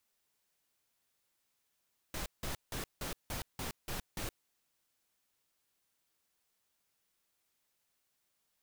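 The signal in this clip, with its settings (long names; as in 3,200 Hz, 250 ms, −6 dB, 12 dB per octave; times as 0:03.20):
noise bursts pink, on 0.12 s, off 0.17 s, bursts 8, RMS −39 dBFS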